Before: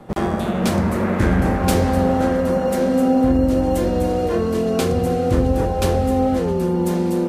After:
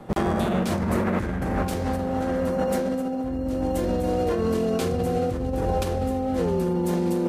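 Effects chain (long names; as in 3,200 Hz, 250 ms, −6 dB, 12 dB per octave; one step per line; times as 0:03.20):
compressor whose output falls as the input rises −21 dBFS, ratio −1
level −3.5 dB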